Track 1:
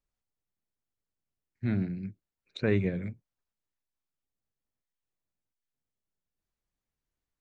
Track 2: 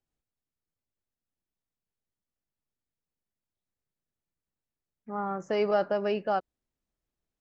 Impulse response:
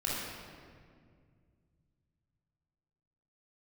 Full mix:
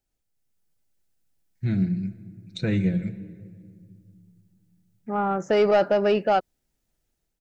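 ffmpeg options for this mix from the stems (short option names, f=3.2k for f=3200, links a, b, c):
-filter_complex "[0:a]bass=f=250:g=9,treble=f=4k:g=13,aecho=1:1:6:0.65,volume=-9dB,asplit=2[a][b];[b]volume=-18.5dB[c];[1:a]asoftclip=type=tanh:threshold=-20.5dB,volume=3dB[d];[2:a]atrim=start_sample=2205[e];[c][e]afir=irnorm=-1:irlink=0[f];[a][d][f]amix=inputs=3:normalize=0,dynaudnorm=f=310:g=3:m=6dB,bandreject=f=1.1k:w=6.1"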